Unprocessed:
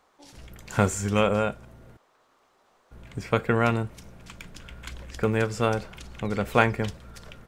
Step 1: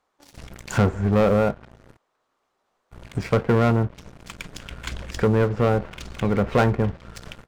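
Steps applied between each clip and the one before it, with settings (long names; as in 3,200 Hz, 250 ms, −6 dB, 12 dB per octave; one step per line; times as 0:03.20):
treble cut that deepens with the level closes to 1,100 Hz, closed at −23 dBFS
leveller curve on the samples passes 3
level −3.5 dB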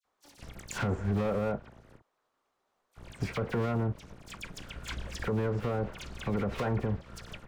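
all-pass dispersion lows, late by 51 ms, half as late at 2,500 Hz
brickwall limiter −16 dBFS, peak gain reduction 11.5 dB
level −5.5 dB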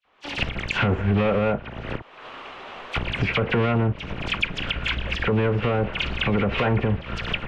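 camcorder AGC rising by 52 dB per second
low-pass with resonance 2,800 Hz, resonance Q 3
level +8.5 dB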